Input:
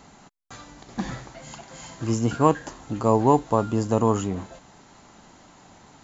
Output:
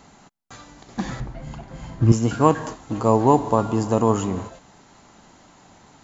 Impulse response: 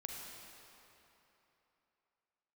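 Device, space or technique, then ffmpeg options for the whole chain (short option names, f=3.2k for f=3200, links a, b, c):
keyed gated reverb: -filter_complex "[0:a]asplit=3[a][b][c];[1:a]atrim=start_sample=2205[d];[b][d]afir=irnorm=-1:irlink=0[e];[c]apad=whole_len=265932[f];[e][f]sidechaingate=range=-33dB:threshold=-37dB:ratio=16:detection=peak,volume=-6.5dB[g];[a][g]amix=inputs=2:normalize=0,asettb=1/sr,asplit=3[h][i][j];[h]atrim=end=1.204[k];[i]atrim=start=1.2:end=2.12,asetpts=PTS-STARTPTS,afade=t=in:d=0.004:c=qsin,afade=t=out:st=0.916:d=0.004:c=qsin,aemphasis=mode=reproduction:type=riaa[l];[j]atrim=start=2.116[m];[k][l]acrossfade=d=0.004:c1=hsin:c2=qsin[n];[n][m]acrossfade=d=0.004:c1=qsin:c2=hsin"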